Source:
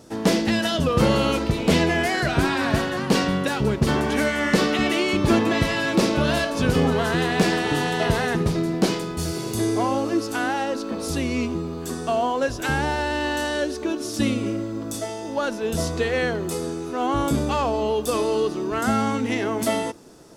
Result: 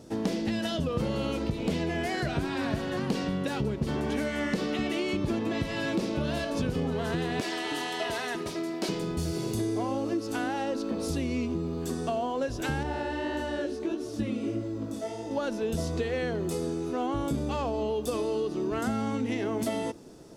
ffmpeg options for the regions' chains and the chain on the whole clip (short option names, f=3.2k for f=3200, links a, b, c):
-filter_complex "[0:a]asettb=1/sr,asplit=3[a][b][c];[a]atrim=end=7.404[d];[b]atrim=start=7.4:end=8.89,asetpts=PTS-STARTPTS,afade=t=in:d=0.004:c=qsin,afade=t=out:st=1.486:d=0.004:c=qsin,highpass=f=990:p=1,aecho=1:1:3.1:0.48,atrim=end_sample=65709[e];[c]atrim=start=8.886[f];[d][e]acrossfade=d=0.004:c1=hsin:c2=qsin[g];[g][f]acrossfade=d=0.004:c1=qsin:c2=hsin,asettb=1/sr,asplit=3[h][i][j];[h]atrim=end=12.834[k];[i]atrim=start=12.83:end=15.31,asetpts=PTS-STARTPTS,afade=t=in:d=0.004:c=qsin,afade=t=out:st=2.476:d=0.004:c=qsin,acrossover=split=2600[l][m];[m]acompressor=threshold=-39dB:ratio=4:attack=1:release=60[n];[l][n]amix=inputs=2:normalize=0,flanger=delay=15.5:depth=7.4:speed=1.6[o];[j]atrim=start=15.306[p];[k][o]acrossfade=d=0.004:c1=hsin:c2=qsin[q];[q][p]acrossfade=d=0.004:c1=qsin:c2=hsin,equalizer=f=1.3k:t=o:w=1.8:g=-6,acompressor=threshold=-26dB:ratio=6,highshelf=f=4.3k:g=-7"